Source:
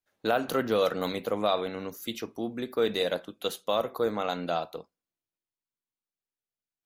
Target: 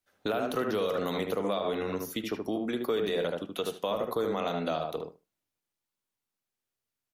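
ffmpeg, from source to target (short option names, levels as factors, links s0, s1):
-filter_complex "[0:a]asplit=2[s0][s1];[s1]acompressor=threshold=0.0178:ratio=6,volume=0.794[s2];[s0][s2]amix=inputs=2:normalize=0,asetrate=42336,aresample=44100,asplit=2[s3][s4];[s4]adelay=75,lowpass=f=1500:p=1,volume=0.631,asplit=2[s5][s6];[s6]adelay=75,lowpass=f=1500:p=1,volume=0.15,asplit=2[s7][s8];[s8]adelay=75,lowpass=f=1500:p=1,volume=0.15[s9];[s3][s5][s7][s9]amix=inputs=4:normalize=0,alimiter=limit=0.15:level=0:latency=1:release=81,acrossover=split=310|2400[s10][s11][s12];[s10]acompressor=threshold=0.0158:ratio=4[s13];[s11]acompressor=threshold=0.0398:ratio=4[s14];[s12]acompressor=threshold=0.00891:ratio=4[s15];[s13][s14][s15]amix=inputs=3:normalize=0"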